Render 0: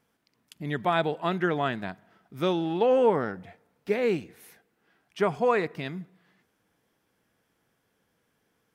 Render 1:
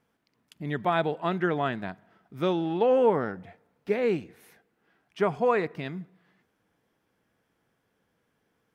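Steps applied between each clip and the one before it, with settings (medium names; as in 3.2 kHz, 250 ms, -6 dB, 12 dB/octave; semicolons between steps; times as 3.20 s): treble shelf 3.8 kHz -7 dB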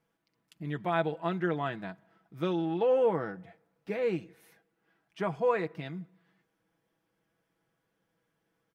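comb 6.1 ms, depth 56%; trim -6 dB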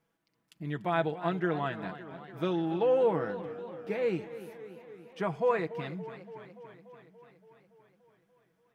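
modulated delay 287 ms, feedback 69%, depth 117 cents, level -14 dB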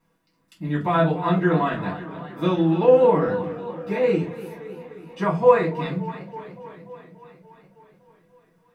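reverberation RT60 0.30 s, pre-delay 3 ms, DRR -5.5 dB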